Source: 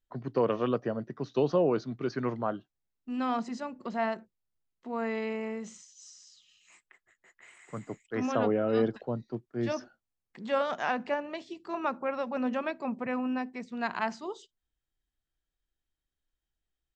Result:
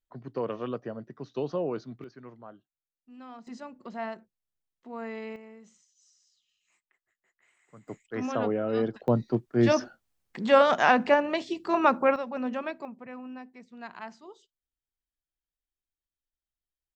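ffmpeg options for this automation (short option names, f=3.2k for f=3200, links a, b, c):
-af "asetnsamples=n=441:p=0,asendcmd='2.04 volume volume -15.5dB;3.47 volume volume -5dB;5.36 volume volume -13dB;7.88 volume volume -1dB;9.08 volume volume 9.5dB;12.16 volume volume -1dB;12.85 volume volume -10dB',volume=-5dB"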